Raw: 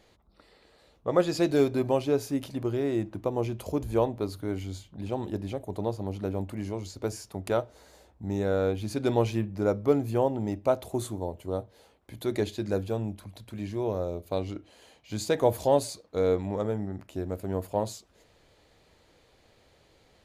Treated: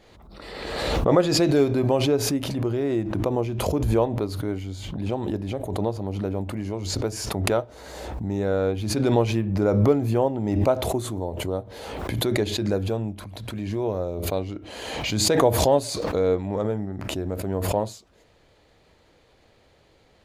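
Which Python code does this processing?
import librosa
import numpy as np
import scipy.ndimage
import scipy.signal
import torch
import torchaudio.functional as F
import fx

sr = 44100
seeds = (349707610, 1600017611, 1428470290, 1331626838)

y = fx.high_shelf(x, sr, hz=5200.0, db=-6.0)
y = fx.pre_swell(y, sr, db_per_s=35.0)
y = F.gain(torch.from_numpy(y), 3.0).numpy()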